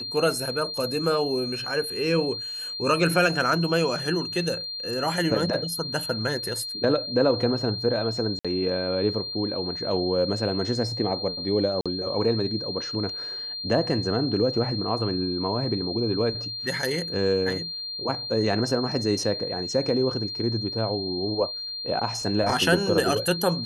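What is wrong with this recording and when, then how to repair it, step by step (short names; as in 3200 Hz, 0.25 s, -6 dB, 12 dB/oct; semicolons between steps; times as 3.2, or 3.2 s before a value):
tone 4200 Hz -31 dBFS
8.39–8.45 gap 56 ms
11.81–11.86 gap 46 ms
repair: notch 4200 Hz, Q 30; interpolate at 8.39, 56 ms; interpolate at 11.81, 46 ms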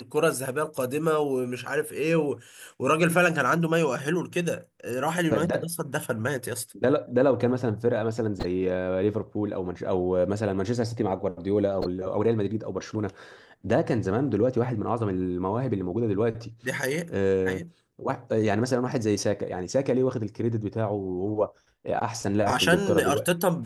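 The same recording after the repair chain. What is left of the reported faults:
none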